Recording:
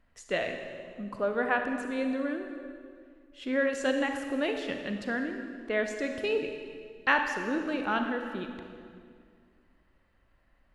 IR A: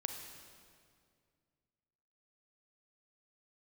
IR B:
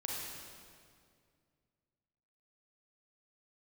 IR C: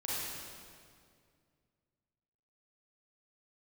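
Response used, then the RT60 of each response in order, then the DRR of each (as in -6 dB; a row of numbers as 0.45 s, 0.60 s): A; 2.2 s, 2.2 s, 2.2 s; 4.5 dB, -3.5 dB, -8.0 dB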